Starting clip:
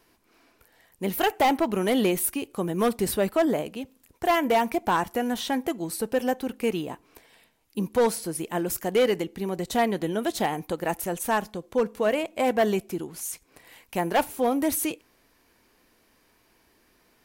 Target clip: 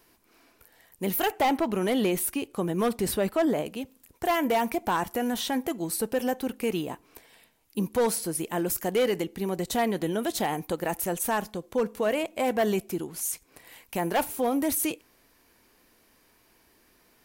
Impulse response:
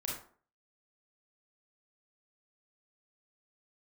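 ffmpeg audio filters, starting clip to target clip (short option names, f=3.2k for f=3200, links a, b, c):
-af "asetnsamples=n=441:p=0,asendcmd='1.3 highshelf g -2;3.66 highshelf g 5.5',highshelf=f=8.7k:g=7,alimiter=limit=-18.5dB:level=0:latency=1:release=14"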